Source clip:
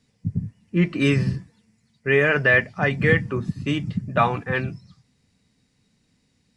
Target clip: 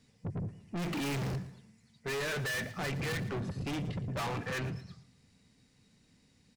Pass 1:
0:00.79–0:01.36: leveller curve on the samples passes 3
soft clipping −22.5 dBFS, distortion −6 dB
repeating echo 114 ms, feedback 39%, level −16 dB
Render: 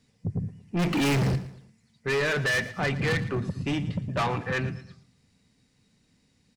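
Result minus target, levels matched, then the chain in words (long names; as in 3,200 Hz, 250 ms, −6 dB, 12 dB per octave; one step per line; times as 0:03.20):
soft clipping: distortion −5 dB
0:00.79–0:01.36: leveller curve on the samples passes 3
soft clipping −33.5 dBFS, distortion −1 dB
repeating echo 114 ms, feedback 39%, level −16 dB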